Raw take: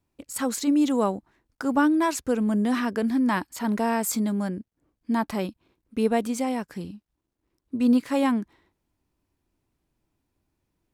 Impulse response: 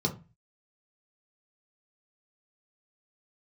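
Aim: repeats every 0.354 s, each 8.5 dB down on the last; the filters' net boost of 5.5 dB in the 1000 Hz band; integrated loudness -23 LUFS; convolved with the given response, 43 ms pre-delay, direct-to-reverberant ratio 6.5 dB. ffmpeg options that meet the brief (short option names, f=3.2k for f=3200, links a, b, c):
-filter_complex "[0:a]equalizer=f=1k:t=o:g=6.5,aecho=1:1:354|708|1062|1416:0.376|0.143|0.0543|0.0206,asplit=2[a][b];[1:a]atrim=start_sample=2205,adelay=43[c];[b][c]afir=irnorm=-1:irlink=0,volume=-13.5dB[d];[a][d]amix=inputs=2:normalize=0,volume=-2.5dB"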